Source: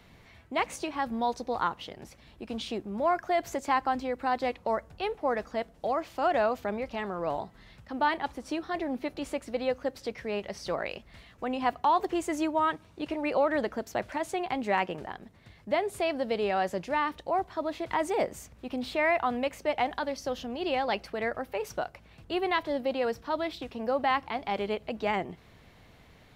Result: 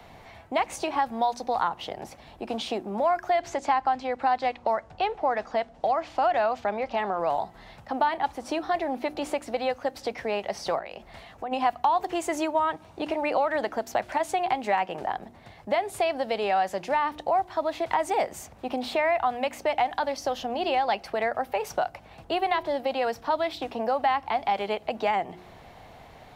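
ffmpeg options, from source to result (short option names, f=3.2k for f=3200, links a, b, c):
-filter_complex "[0:a]asettb=1/sr,asplit=3[a][b][c];[a]atrim=end=3.304[d];[b]atrim=start=3.3:end=7.2,asetpts=PTS-STARTPTS,afade=t=in:d=0.004:c=qsin,afade=t=out:st=3.896:d=0.004:c=qsin,lowpass=6.1k[e];[c]atrim=start=7.196[f];[d][e]acrossfade=d=0.004:c1=hsin:c2=qsin[g];[g][f]acrossfade=d=0.004:c1=qsin:c2=hsin,asplit=3[h][i][j];[h]afade=t=out:st=10.78:d=0.02[k];[i]acompressor=threshold=-42dB:ratio=4:attack=3.2:release=140:knee=1:detection=peak,afade=t=in:st=10.78:d=0.02,afade=t=out:st=11.51:d=0.02[l];[j]afade=t=in:st=11.51:d=0.02[m];[k][l][m]amix=inputs=3:normalize=0,equalizer=f=760:t=o:w=0.84:g=12,bandreject=f=60.07:t=h:w=4,bandreject=f=120.14:t=h:w=4,bandreject=f=180.21:t=h:w=4,bandreject=f=240.28:t=h:w=4,bandreject=f=300.35:t=h:w=4,bandreject=f=360.42:t=h:w=4,acrossover=split=190|1300[n][o][p];[n]acompressor=threshold=-54dB:ratio=4[q];[o]acompressor=threshold=-31dB:ratio=4[r];[p]acompressor=threshold=-34dB:ratio=4[s];[q][r][s]amix=inputs=3:normalize=0,volume=4.5dB"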